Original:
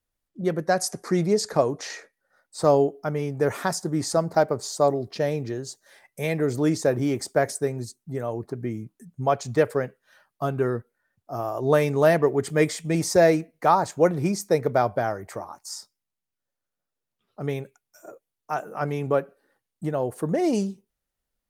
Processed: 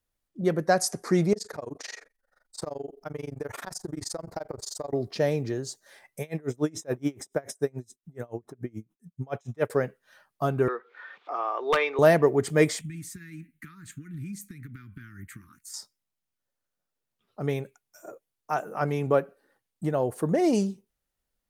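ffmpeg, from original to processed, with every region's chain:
-filter_complex "[0:a]asettb=1/sr,asplit=3[a][b][c];[a]atrim=end=1.334[d];[b]atrim=start=1.33:end=4.93,asetpts=PTS-STARTPTS,afade=t=in:d=0.004:c=qsin,afade=t=out:st=3.596:d=0.004:c=qsin,asubboost=boost=10.5:cutoff=55,acompressor=threshold=-27dB:ratio=16:attack=3.2:release=140:knee=1:detection=peak,tremolo=f=23:d=0.974[e];[c]atrim=start=4.926[f];[d][e]acrossfade=d=0.004:c1=hsin:c2=qsin[g];[g][f]acrossfade=d=0.004:c1=qsin:c2=hsin,asettb=1/sr,asplit=3[h][i][j];[h]atrim=end=6.214[k];[i]atrim=start=6.21:end=9.7,asetpts=PTS-STARTPTS,afade=t=in:d=0.004:c=qsin,afade=t=out:st=3.486:d=0.004:c=qsin,asuperstop=centerf=4500:order=8:qfactor=5.7,aeval=exprs='val(0)*pow(10,-31*(0.5-0.5*cos(2*PI*7*n/s))/20)':c=same[l];[j]atrim=start=9.696[m];[k][l]acrossfade=d=0.004:c1=hsin:c2=qsin[n];[n][m]acrossfade=d=0.004:c1=qsin:c2=hsin,asettb=1/sr,asplit=3[o][p][q];[o]atrim=end=10.684[r];[p]atrim=start=10.68:end=11.99,asetpts=PTS-STARTPTS,afade=t=in:d=0.004:c=qsin,afade=t=out:st=1.306:d=0.004:c=qsin,acompressor=mode=upward:threshold=-22dB:ratio=2.5:attack=3.2:release=140:knee=2.83:detection=peak,highpass=f=430:w=0.5412,highpass=f=430:w=1.3066,equalizer=f=620:t=q:w=4:g=-9,equalizer=f=1.2k:t=q:w=4:g=7,equalizer=f=2.3k:t=q:w=4:g=7,equalizer=f=3.5k:t=q:w=4:g=6,lowpass=f=3.8k:w=0.5412,lowpass=f=3.8k:w=1.3066,aeval=exprs='0.188*(abs(mod(val(0)/0.188+3,4)-2)-1)':c=same[s];[q]atrim=start=11.986[t];[r][s]acrossfade=d=0.004:c1=hsin:c2=qsin[u];[u][t]acrossfade=d=0.004:c1=qsin:c2=hsin,asettb=1/sr,asplit=3[v][w][x];[v]atrim=end=12.814[y];[w]atrim=start=12.81:end=15.74,asetpts=PTS-STARTPTS,afade=t=in:d=0.004:c=qsin,afade=t=out:st=2.926:d=0.004:c=qsin,acompressor=threshold=-31dB:ratio=12:attack=3.2:release=140:knee=1:detection=peak,asuperstop=centerf=650:order=8:qfactor=0.52,equalizer=f=5.2k:t=o:w=0.69:g=-14[z];[x]atrim=start=15.736[aa];[y][z]acrossfade=d=0.004:c1=hsin:c2=qsin[ab];[ab][aa]acrossfade=d=0.004:c1=qsin:c2=hsin"

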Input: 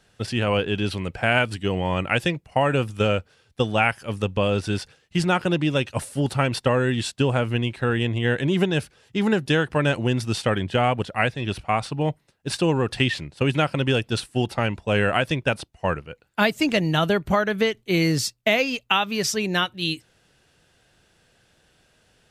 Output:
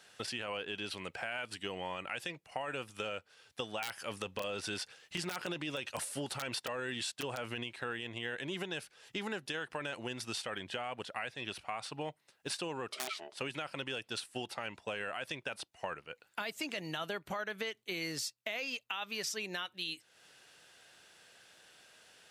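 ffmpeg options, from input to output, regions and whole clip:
-filter_complex "[0:a]asettb=1/sr,asplit=3[a][b][c];[a]atrim=end=3.824[d];[b]atrim=start=3.82:end=7.64,asetpts=PTS-STARTPTS,afade=t=in:d=0.004:c=qsin,afade=t=out:st=3.816:d=0.004:c=qsin,acontrast=31,aeval=exprs='(mod(2.11*val(0)+1,2)-1)/2.11':c=same[e];[c]atrim=start=7.636[f];[d][e]acrossfade=d=0.004:c1=hsin:c2=qsin[g];[g][f]acrossfade=d=0.004:c1=qsin:c2=hsin,asettb=1/sr,asplit=3[h][i][j];[h]atrim=end=12.924[k];[i]atrim=start=12.92:end=13.35,asetpts=PTS-STARTPTS,afade=t=in:d=0.004:c=qsin,afade=t=out:st=0.426:d=0.004:c=qsin,aeval=exprs='val(0)*sin(2*PI*510*n/s)':c=same,aeval=exprs='(mod(5.62*val(0)+1,2)-1)/5.62':c=same[l];[j]atrim=start=13.346[m];[k][l]acrossfade=d=0.004:c1=hsin:c2=qsin[n];[n][m]acrossfade=d=0.004:c1=qsin:c2=hsin,highpass=f=880:p=1,alimiter=limit=-17.5dB:level=0:latency=1:release=14,acompressor=threshold=-44dB:ratio=3,volume=3.5dB"

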